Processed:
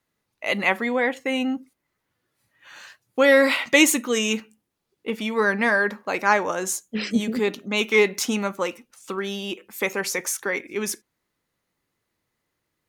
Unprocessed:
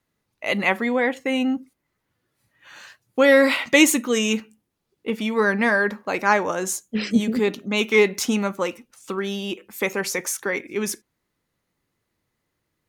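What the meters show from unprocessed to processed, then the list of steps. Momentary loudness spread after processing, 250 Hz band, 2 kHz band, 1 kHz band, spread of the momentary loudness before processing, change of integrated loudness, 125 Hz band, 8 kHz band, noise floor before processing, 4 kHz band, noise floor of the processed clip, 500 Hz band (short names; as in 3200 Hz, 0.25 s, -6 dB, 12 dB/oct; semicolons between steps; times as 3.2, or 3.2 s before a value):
14 LU, -3.0 dB, 0.0 dB, -0.5 dB, 13 LU, -1.0 dB, -3.5 dB, 0.0 dB, -77 dBFS, 0.0 dB, -79 dBFS, -1.5 dB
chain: low shelf 300 Hz -5 dB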